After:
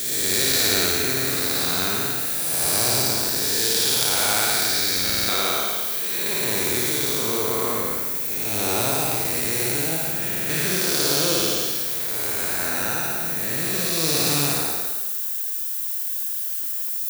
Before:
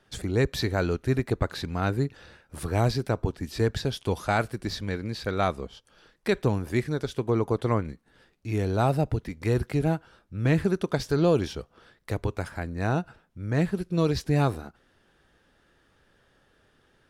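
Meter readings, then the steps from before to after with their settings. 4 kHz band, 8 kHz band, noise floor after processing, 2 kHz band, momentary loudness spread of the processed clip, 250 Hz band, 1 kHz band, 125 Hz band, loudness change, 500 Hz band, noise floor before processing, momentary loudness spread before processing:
+17.0 dB, +25.0 dB, -27 dBFS, +8.5 dB, 5 LU, -2.5 dB, +2.5 dB, -7.0 dB, +7.5 dB, -0.5 dB, -66 dBFS, 10 LU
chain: time blur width 0.498 s; high shelf 2400 Hz +11.5 dB; added noise blue -52 dBFS; RIAA curve recording; flutter echo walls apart 9.5 m, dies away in 0.93 s; stuck buffer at 5.05/10.26, samples 2048, times 4; gain +5.5 dB

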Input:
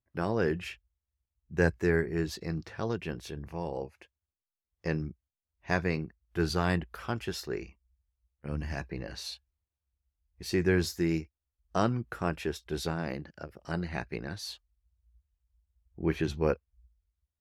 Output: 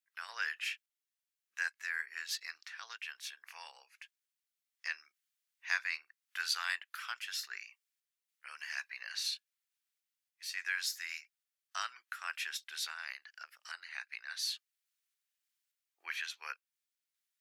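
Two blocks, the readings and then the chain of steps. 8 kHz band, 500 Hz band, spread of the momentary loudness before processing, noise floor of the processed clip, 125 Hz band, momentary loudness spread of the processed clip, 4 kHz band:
+2.5 dB, -35.5 dB, 13 LU, under -85 dBFS, under -40 dB, 16 LU, +2.5 dB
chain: HPF 1500 Hz 24 dB/oct; in parallel at 0 dB: compressor, threshold -52 dBFS, peak gain reduction 21.5 dB; on the sum: random-step tremolo; gain +3 dB

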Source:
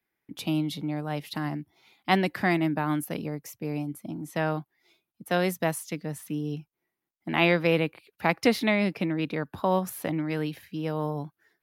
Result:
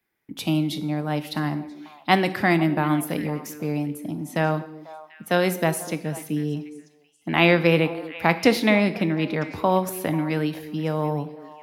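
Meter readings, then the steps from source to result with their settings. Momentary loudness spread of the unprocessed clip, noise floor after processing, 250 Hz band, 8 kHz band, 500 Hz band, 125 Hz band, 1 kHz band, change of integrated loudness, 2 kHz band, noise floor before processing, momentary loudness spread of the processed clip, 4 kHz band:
12 LU, -59 dBFS, +5.0 dB, +5.0 dB, +5.0 dB, +5.5 dB, +5.0 dB, +5.0 dB, +5.0 dB, -85 dBFS, 13 LU, +5.0 dB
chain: on a send: delay with a stepping band-pass 0.246 s, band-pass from 330 Hz, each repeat 1.4 oct, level -11 dB; on the sum: plate-style reverb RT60 0.74 s, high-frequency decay 0.95×, DRR 11.5 dB; gain +4.5 dB

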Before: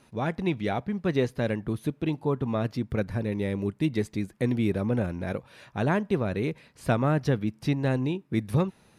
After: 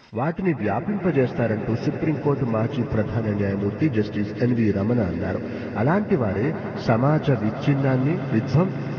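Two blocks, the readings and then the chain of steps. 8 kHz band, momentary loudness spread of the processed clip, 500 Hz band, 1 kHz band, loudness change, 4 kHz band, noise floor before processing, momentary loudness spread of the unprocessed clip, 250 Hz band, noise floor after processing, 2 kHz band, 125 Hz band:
n/a, 4 LU, +5.5 dB, +6.0 dB, +5.5 dB, +0.5 dB, -61 dBFS, 5 LU, +5.5 dB, -32 dBFS, +4.5 dB, +6.0 dB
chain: nonlinear frequency compression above 1300 Hz 1.5:1; swelling echo 0.108 s, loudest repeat 5, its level -16.5 dB; mismatched tape noise reduction encoder only; gain +5 dB

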